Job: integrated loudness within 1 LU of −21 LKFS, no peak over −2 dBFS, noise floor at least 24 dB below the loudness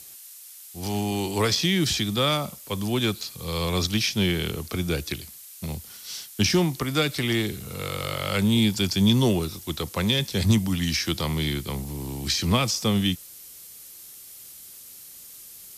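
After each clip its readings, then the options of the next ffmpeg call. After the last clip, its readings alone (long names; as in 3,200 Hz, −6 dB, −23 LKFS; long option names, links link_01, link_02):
background noise floor −45 dBFS; target noise floor −49 dBFS; integrated loudness −25.0 LKFS; sample peak −6.5 dBFS; target loudness −21.0 LKFS
→ -af "afftdn=noise_reduction=6:noise_floor=-45"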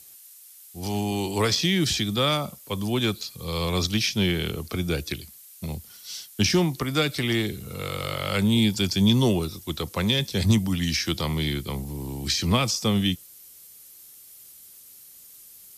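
background noise floor −49 dBFS; integrated loudness −25.0 LKFS; sample peak −6.5 dBFS; target loudness −21.0 LKFS
→ -af "volume=4dB"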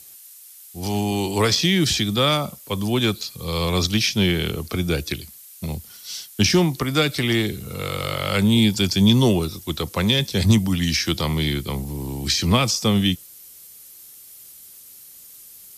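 integrated loudness −21.0 LKFS; sample peak −2.5 dBFS; background noise floor −45 dBFS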